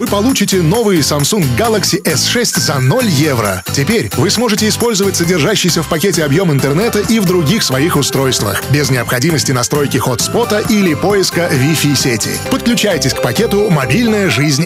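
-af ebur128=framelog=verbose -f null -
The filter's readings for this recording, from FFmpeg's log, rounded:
Integrated loudness:
  I:         -11.9 LUFS
  Threshold: -21.9 LUFS
Loudness range:
  LRA:         0.8 LU
  Threshold: -31.9 LUFS
  LRA low:   -12.3 LUFS
  LRA high:  -11.5 LUFS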